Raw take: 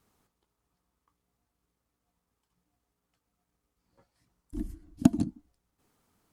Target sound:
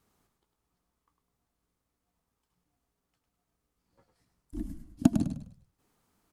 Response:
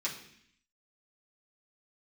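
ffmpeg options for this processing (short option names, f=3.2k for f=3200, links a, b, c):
-filter_complex "[0:a]asplit=5[a][b][c][d][e];[b]adelay=102,afreqshift=-38,volume=-7.5dB[f];[c]adelay=204,afreqshift=-76,volume=-16.9dB[g];[d]adelay=306,afreqshift=-114,volume=-26.2dB[h];[e]adelay=408,afreqshift=-152,volume=-35.6dB[i];[a][f][g][h][i]amix=inputs=5:normalize=0,volume=-1.5dB"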